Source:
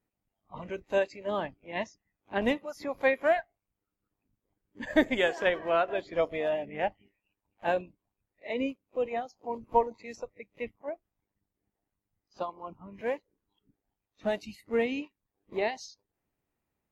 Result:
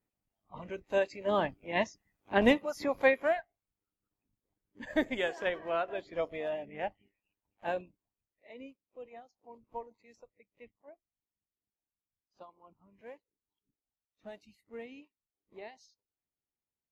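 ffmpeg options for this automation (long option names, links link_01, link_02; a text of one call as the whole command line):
ffmpeg -i in.wav -af "volume=3.5dB,afade=type=in:start_time=0.9:duration=0.56:silence=0.446684,afade=type=out:start_time=2.84:duration=0.52:silence=0.334965,afade=type=out:start_time=7.8:duration=0.72:silence=0.281838" out.wav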